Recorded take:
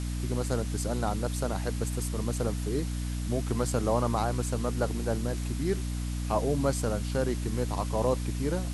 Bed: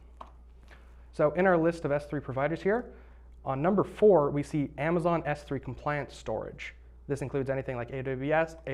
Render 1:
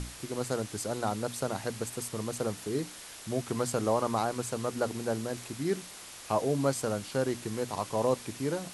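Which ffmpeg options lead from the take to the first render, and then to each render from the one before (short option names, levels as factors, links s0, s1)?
-af "bandreject=f=60:t=h:w=6,bandreject=f=120:t=h:w=6,bandreject=f=180:t=h:w=6,bandreject=f=240:t=h:w=6,bandreject=f=300:t=h:w=6"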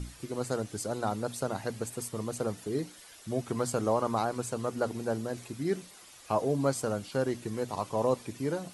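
-af "afftdn=nr=10:nf=-47"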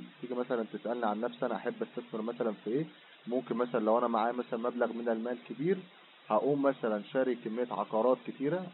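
-af "afftfilt=real='re*between(b*sr/4096,150,3900)':imag='im*between(b*sr/4096,150,3900)':win_size=4096:overlap=0.75"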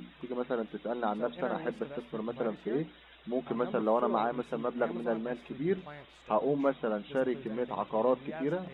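-filter_complex "[1:a]volume=0.158[s0];[0:a][s0]amix=inputs=2:normalize=0"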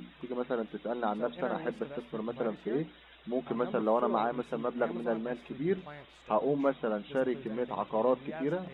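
-af anull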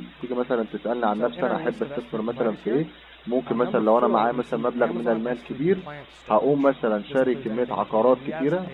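-af "volume=2.82"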